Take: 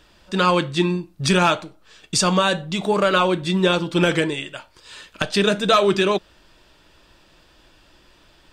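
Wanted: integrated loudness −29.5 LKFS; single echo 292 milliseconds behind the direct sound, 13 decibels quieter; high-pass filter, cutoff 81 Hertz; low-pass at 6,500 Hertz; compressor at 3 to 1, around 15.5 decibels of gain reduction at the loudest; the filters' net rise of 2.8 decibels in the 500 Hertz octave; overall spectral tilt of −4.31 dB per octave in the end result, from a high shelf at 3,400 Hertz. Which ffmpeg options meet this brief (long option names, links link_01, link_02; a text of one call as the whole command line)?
ffmpeg -i in.wav -af "highpass=81,lowpass=6500,equalizer=frequency=500:width_type=o:gain=3.5,highshelf=frequency=3400:gain=4.5,acompressor=threshold=-33dB:ratio=3,aecho=1:1:292:0.224,volume=2.5dB" out.wav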